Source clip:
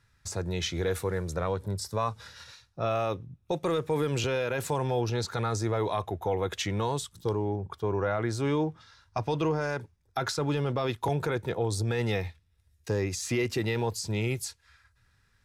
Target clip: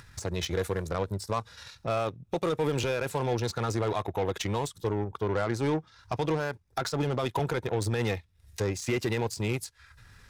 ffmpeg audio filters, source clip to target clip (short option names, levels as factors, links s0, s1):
-af "acompressor=mode=upward:threshold=0.0282:ratio=2.5,atempo=1.5,aeval=exprs='0.126*(cos(1*acos(clip(val(0)/0.126,-1,1)))-cos(1*PI/2))+0.00631*(cos(5*acos(clip(val(0)/0.126,-1,1)))-cos(5*PI/2))+0.0126*(cos(7*acos(clip(val(0)/0.126,-1,1)))-cos(7*PI/2))':c=same"